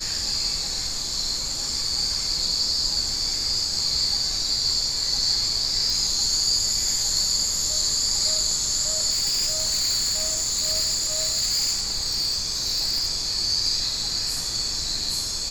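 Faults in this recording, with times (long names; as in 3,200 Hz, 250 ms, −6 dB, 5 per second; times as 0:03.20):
0:05.90: click
0:09.10–0:13.09: clipping −19.5 dBFS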